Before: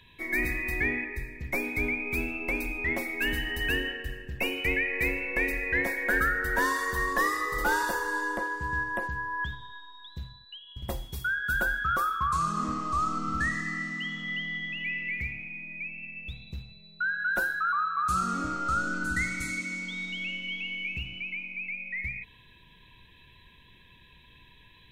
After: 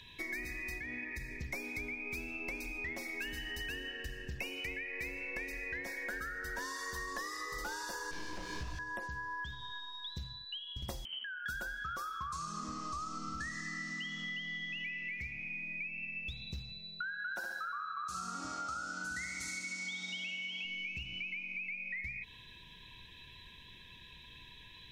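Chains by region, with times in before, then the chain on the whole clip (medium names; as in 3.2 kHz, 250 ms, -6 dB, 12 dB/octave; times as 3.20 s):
0.78–1.31 s: compression 3:1, threshold -31 dBFS + comb of notches 400 Hz
8.11–8.79 s: one-bit comparator + RIAA curve playback + detune thickener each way 55 cents
11.05–11.46 s: compression 10:1, threshold -40 dBFS + frequency inversion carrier 3.1 kHz
17.19–20.65 s: high-pass 150 Hz 6 dB/octave + peaking EQ 830 Hz +6.5 dB 0.72 oct + flutter echo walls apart 11.4 m, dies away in 0.74 s
whole clip: peaking EQ 5.5 kHz +13 dB 1.1 oct; compression 10:1, threshold -37 dBFS; trim -1 dB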